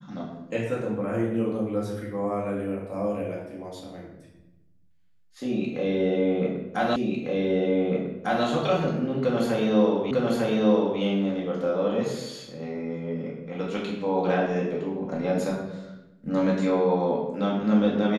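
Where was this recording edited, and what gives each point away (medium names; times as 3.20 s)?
6.96 s: repeat of the last 1.5 s
10.11 s: repeat of the last 0.9 s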